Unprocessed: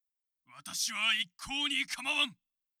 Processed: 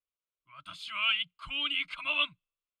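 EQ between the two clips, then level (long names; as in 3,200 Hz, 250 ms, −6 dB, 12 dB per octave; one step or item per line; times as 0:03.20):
low-pass filter 3,200 Hz 12 dB per octave
parametric band 750 Hz −5 dB 0.22 octaves
phaser with its sweep stopped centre 1,200 Hz, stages 8
+4.0 dB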